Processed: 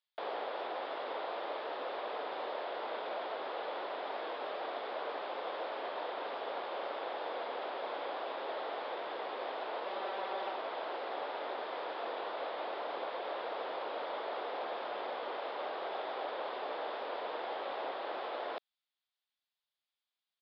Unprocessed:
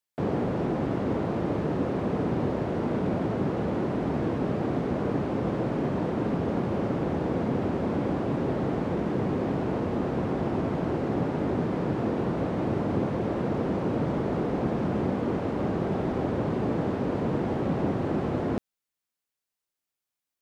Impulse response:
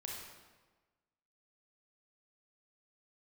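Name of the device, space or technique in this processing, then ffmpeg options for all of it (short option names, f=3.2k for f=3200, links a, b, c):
musical greeting card: -filter_complex "[0:a]aresample=11025,aresample=44100,highpass=f=580:w=0.5412,highpass=f=580:w=1.3066,equalizer=f=3.5k:t=o:w=0.44:g=9.5,asettb=1/sr,asplit=3[a][b][c];[a]atrim=end=9.854[d];[b]atrim=start=9.85:end=10.53,asetpts=PTS-STARTPTS,afade=t=in:d=0.004:c=qsin,afade=t=out:st=0.676:d=0.004:c=qsin,aecho=1:1:5.2:0.63,atrim=end_sample=29988[e];[c]atrim=start=10.526[f];[d][e]acrossfade=d=0.004:c1=hsin:c2=qsin[g];[g][f]acrossfade=d=0.004:c1=qsin:c2=hsin,volume=-3dB"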